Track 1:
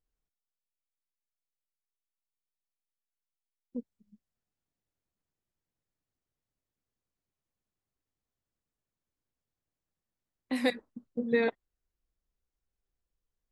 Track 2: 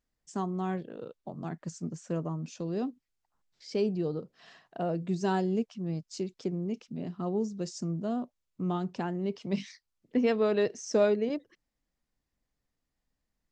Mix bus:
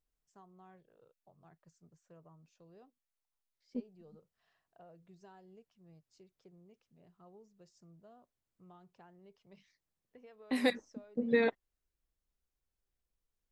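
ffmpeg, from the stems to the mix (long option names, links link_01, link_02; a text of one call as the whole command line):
ffmpeg -i stem1.wav -i stem2.wav -filter_complex "[0:a]volume=-1.5dB[link_01];[1:a]equalizer=frequency=250:width_type=o:width=1.2:gain=-15,acompressor=threshold=-34dB:ratio=10,highshelf=frequency=2600:gain=-9.5,volume=-18.5dB[link_02];[link_01][link_02]amix=inputs=2:normalize=0" out.wav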